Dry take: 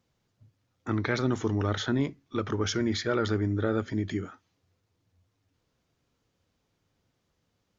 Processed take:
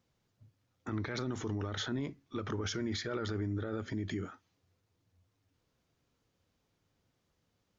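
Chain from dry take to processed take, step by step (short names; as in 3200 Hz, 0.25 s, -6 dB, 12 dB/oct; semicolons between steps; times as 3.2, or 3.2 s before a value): limiter -25 dBFS, peak gain reduction 11.5 dB; gain -2.5 dB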